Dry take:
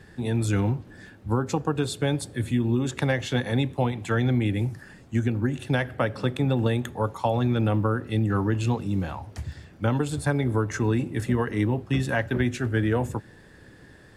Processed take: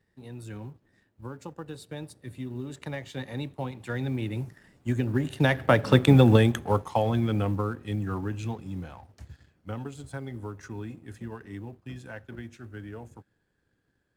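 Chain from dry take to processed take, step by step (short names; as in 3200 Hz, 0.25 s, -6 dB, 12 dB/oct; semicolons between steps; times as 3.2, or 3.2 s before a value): G.711 law mismatch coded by A; Doppler pass-by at 6.06, 18 m/s, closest 6.9 m; gain +8 dB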